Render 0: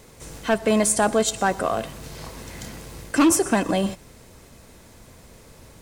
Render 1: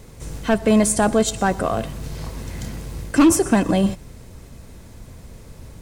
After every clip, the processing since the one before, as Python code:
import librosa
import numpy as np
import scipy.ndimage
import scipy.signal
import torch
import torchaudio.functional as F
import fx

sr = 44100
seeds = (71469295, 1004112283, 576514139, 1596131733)

y = fx.low_shelf(x, sr, hz=220.0, db=11.5)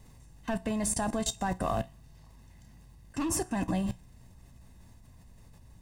y = x + 0.53 * np.pad(x, (int(1.1 * sr / 1000.0), 0))[:len(x)]
y = fx.level_steps(y, sr, step_db=24)
y = fx.comb_fb(y, sr, f0_hz=61.0, decay_s=0.21, harmonics='all', damping=0.0, mix_pct=50)
y = y * librosa.db_to_amplitude(-2.5)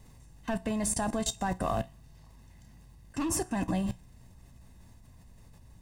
y = x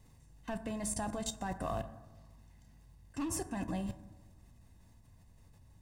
y = fx.rev_fdn(x, sr, rt60_s=1.2, lf_ratio=1.25, hf_ratio=0.3, size_ms=63.0, drr_db=10.0)
y = y * librosa.db_to_amplitude(-7.0)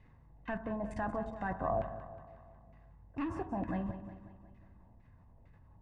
y = fx.filter_lfo_lowpass(x, sr, shape='saw_down', hz=2.2, low_hz=630.0, high_hz=2300.0, q=2.1)
y = fx.echo_feedback(y, sr, ms=182, feedback_pct=55, wet_db=-13.0)